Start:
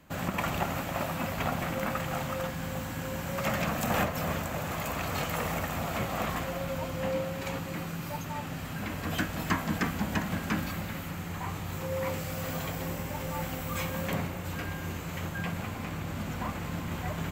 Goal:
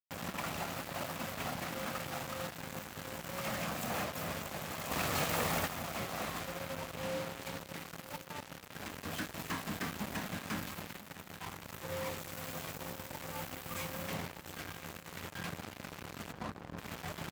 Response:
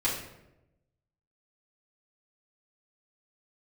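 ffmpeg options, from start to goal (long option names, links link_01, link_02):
-filter_complex "[0:a]lowshelf=frequency=120:gain=-5.5,acrusher=bits=4:mix=0:aa=0.5,asplit=3[link_01][link_02][link_03];[link_01]afade=type=out:start_time=16.31:duration=0.02[link_04];[link_02]adynamicsmooth=sensitivity=3.5:basefreq=620,afade=type=in:start_time=16.31:duration=0.02,afade=type=out:start_time=16.77:duration=0.02[link_05];[link_03]afade=type=in:start_time=16.77:duration=0.02[link_06];[link_04][link_05][link_06]amix=inputs=3:normalize=0,volume=31.5dB,asoftclip=hard,volume=-31.5dB,highpass=53,asplit=2[link_07][link_08];[link_08]aecho=0:1:1001:0.15[link_09];[link_07][link_09]amix=inputs=2:normalize=0,asettb=1/sr,asplit=3[link_10][link_11][link_12];[link_10]atrim=end=4.914[link_13];[link_11]atrim=start=4.91:end=5.68,asetpts=PTS-STARTPTS,afade=type=in:duration=0.004:curve=qsin,afade=type=out:start_time=0.766:duration=0.004:curve=qsin,acontrast=53[link_14];[link_12]atrim=start=5.676[link_15];[link_13][link_14]acrossfade=duration=0.004:curve1=hsin:curve2=qsin[link_16];[link_16][link_15]acrossfade=duration=0.004:curve1=qsin:curve2=hsin,volume=-1.5dB"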